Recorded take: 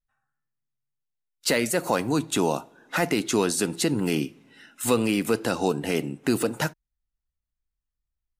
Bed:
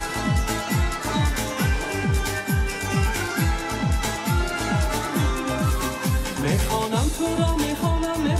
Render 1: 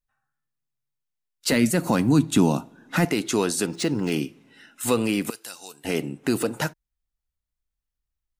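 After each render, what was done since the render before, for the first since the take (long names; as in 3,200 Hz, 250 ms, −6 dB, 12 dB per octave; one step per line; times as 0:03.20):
0:01.52–0:03.05: low shelf with overshoot 330 Hz +8 dB, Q 1.5
0:03.66–0:04.12: linearly interpolated sample-rate reduction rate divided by 3×
0:05.30–0:05.85: first-order pre-emphasis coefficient 0.97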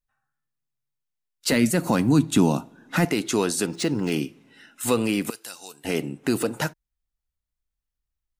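no processing that can be heard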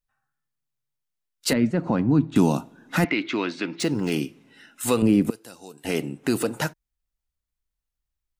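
0:01.53–0:02.36: head-to-tape spacing loss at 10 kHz 36 dB
0:03.04–0:03.80: loudspeaker in its box 200–3,800 Hz, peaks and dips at 200 Hz −5 dB, 300 Hz +4 dB, 440 Hz −10 dB, 780 Hz −7 dB, 2,200 Hz +9 dB
0:05.02–0:05.78: tilt shelving filter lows +9.5 dB, about 690 Hz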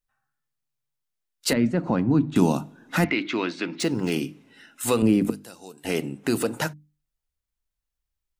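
mains-hum notches 50/100/150/200/250/300 Hz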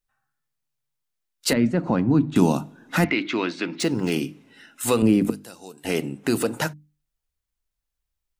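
level +1.5 dB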